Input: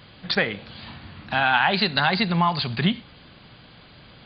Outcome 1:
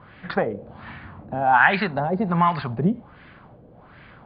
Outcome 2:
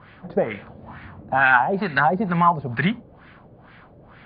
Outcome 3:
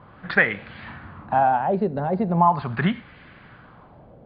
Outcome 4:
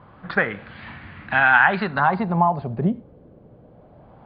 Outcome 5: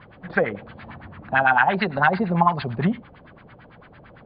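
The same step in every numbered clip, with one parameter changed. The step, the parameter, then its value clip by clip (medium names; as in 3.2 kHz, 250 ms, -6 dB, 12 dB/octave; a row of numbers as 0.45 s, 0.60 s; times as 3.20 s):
LFO low-pass, rate: 1.3 Hz, 2.2 Hz, 0.39 Hz, 0.23 Hz, 8.9 Hz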